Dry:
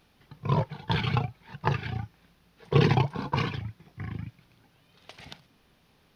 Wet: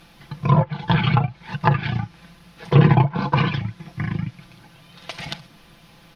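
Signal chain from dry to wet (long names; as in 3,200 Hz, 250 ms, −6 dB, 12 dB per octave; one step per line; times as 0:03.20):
parametric band 410 Hz −6.5 dB 0.43 octaves
comb filter 5.9 ms, depth 59%
treble cut that deepens with the level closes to 1,900 Hz, closed at −20 dBFS
in parallel at +3 dB: downward compressor, threshold −37 dBFS, peak gain reduction 20.5 dB
on the sum: level +5.5 dB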